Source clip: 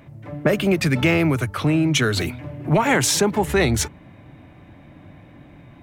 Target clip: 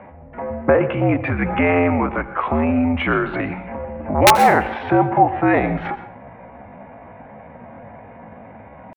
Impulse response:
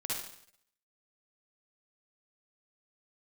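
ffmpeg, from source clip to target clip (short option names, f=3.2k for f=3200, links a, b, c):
-filter_complex "[0:a]equalizer=f=850:t=o:w=1.2:g=14,highpass=f=160:t=q:w=0.5412,highpass=f=160:t=q:w=1.307,lowpass=f=2.6k:t=q:w=0.5176,lowpass=f=2.6k:t=q:w=0.7071,lowpass=f=2.6k:t=q:w=1.932,afreqshift=-65,asplit=2[a][b];[b]acompressor=threshold=-26dB:ratio=10,volume=2dB[c];[a][c]amix=inputs=2:normalize=0,atempo=0.65,aeval=exprs='(mod(0.794*val(0)+1,2)-1)/0.794':c=same,asplit=2[d][e];[1:a]atrim=start_sample=2205,asetrate=66150,aresample=44100,adelay=82[f];[e][f]afir=irnorm=-1:irlink=0,volume=-12dB[g];[d][g]amix=inputs=2:normalize=0,volume=-4dB"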